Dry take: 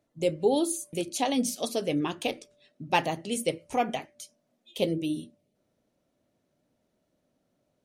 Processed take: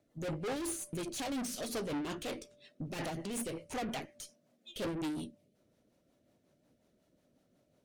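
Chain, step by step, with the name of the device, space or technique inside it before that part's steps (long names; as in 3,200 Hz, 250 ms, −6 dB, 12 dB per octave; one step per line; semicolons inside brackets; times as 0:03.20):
overdriven rotary cabinet (tube saturation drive 39 dB, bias 0.4; rotating-speaker cabinet horn 5.5 Hz)
level +5.5 dB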